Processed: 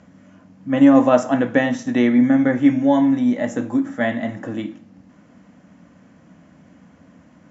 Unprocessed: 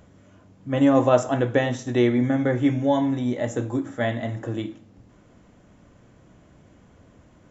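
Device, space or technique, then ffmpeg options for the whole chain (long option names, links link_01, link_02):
car door speaker: -af "highpass=110,equalizer=frequency=120:width_type=q:width=4:gain=-9,equalizer=frequency=180:width_type=q:width=4:gain=7,equalizer=frequency=260:width_type=q:width=4:gain=6,equalizer=frequency=390:width_type=q:width=4:gain=-10,equalizer=frequency=1800:width_type=q:width=4:gain=3,equalizer=frequency=3600:width_type=q:width=4:gain=-5,lowpass=frequency=6800:width=0.5412,lowpass=frequency=6800:width=1.3066,volume=3.5dB"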